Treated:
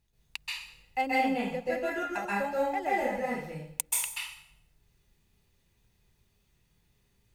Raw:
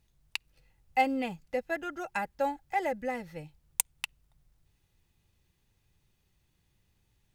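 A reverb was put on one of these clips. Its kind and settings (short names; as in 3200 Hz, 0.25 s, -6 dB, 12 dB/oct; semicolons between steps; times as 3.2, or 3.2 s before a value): plate-style reverb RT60 0.68 s, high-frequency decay 0.95×, pre-delay 0.12 s, DRR -7 dB; gain -4.5 dB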